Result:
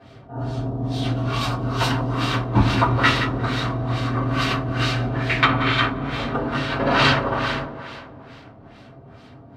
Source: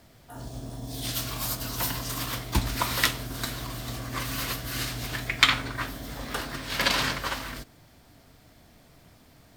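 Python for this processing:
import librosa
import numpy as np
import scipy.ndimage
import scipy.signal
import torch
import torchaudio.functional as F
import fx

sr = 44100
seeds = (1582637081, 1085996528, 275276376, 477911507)

y = scipy.signal.sosfilt(scipy.signal.butter(2, 67.0, 'highpass', fs=sr, output='sos'), x)
y = fx.peak_eq(y, sr, hz=1900.0, db=-4.0, octaves=0.37)
y = fx.echo_feedback(y, sr, ms=176, feedback_pct=51, wet_db=-10)
y = fx.rev_double_slope(y, sr, seeds[0], early_s=0.21, late_s=2.8, knee_db=-21, drr_db=-9.0)
y = fx.filter_lfo_lowpass(y, sr, shape='sine', hz=2.3, low_hz=750.0, high_hz=3400.0, q=0.83)
y = y * 10.0 ** (2.5 / 20.0)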